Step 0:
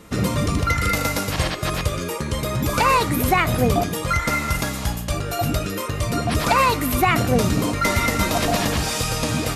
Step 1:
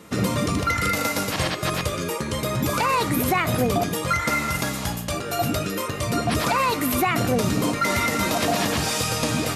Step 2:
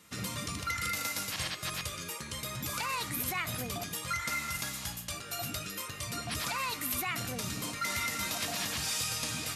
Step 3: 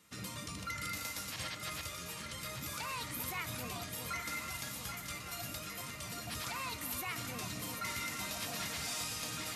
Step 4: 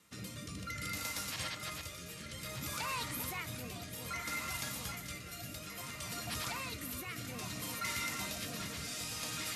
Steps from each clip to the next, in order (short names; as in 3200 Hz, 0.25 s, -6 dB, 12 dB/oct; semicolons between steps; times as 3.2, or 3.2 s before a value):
HPF 100 Hz 12 dB/oct; notches 50/100/150 Hz; limiter -12 dBFS, peak gain reduction 6 dB
passive tone stack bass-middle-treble 5-5-5
resonator 310 Hz, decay 1 s, mix 60%; on a send: echo with dull and thin repeats by turns 0.391 s, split 950 Hz, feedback 81%, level -5.5 dB; on the sum: gain +1 dB
rotary speaker horn 0.6 Hz; gain +2.5 dB